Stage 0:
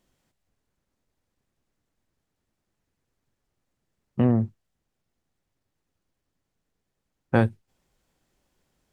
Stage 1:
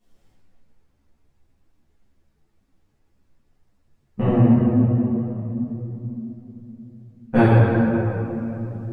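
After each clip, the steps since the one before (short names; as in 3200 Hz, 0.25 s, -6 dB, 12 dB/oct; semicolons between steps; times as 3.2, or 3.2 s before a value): low shelf 160 Hz +6.5 dB; shoebox room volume 190 m³, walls hard, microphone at 1.8 m; ensemble effect; gain -1.5 dB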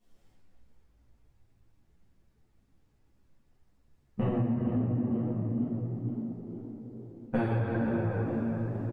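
compressor 12:1, threshold -21 dBFS, peak gain reduction 12 dB; on a send: frequency-shifting echo 0.465 s, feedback 50%, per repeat +54 Hz, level -12 dB; on the sum: gain -4 dB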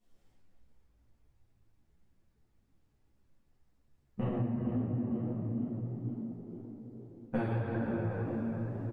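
flange 1.8 Hz, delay 8.5 ms, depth 9.2 ms, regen -64%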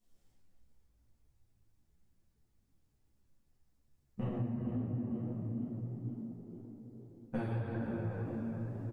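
tone controls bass +3 dB, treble +8 dB; gain -5.5 dB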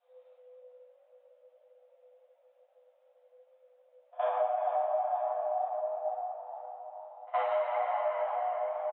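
frequency shift +500 Hz; downsampling 8000 Hz; pre-echo 66 ms -23.5 dB; gain +6 dB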